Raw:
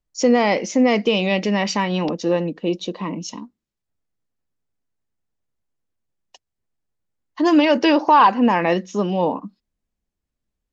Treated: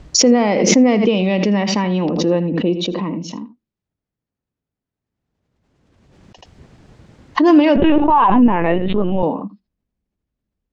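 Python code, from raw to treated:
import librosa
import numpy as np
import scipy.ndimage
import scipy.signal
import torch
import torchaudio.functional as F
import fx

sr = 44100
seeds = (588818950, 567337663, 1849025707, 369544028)

y = fx.highpass(x, sr, hz=60.0, slope=6)
y = fx.low_shelf(y, sr, hz=480.0, db=8.5)
y = y + 10.0 ** (-14.5 / 20.0) * np.pad(y, (int(80 * sr / 1000.0), 0))[:len(y)]
y = fx.lpc_vocoder(y, sr, seeds[0], excitation='pitch_kept', order=16, at=(7.76, 9.23))
y = fx.air_absorb(y, sr, metres=110.0)
y = fx.pre_swell(y, sr, db_per_s=30.0)
y = y * librosa.db_to_amplitude(-2.0)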